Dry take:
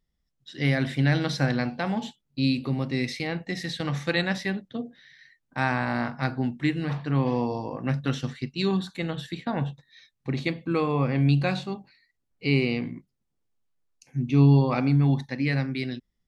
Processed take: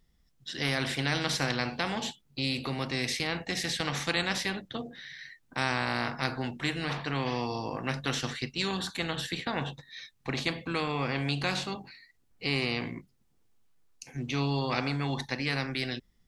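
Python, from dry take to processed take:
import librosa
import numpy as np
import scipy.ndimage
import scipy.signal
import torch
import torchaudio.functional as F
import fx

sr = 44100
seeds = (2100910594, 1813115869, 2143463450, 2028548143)

y = fx.notch(x, sr, hz=580.0, q=12.0)
y = fx.spectral_comp(y, sr, ratio=2.0)
y = y * librosa.db_to_amplitude(-2.5)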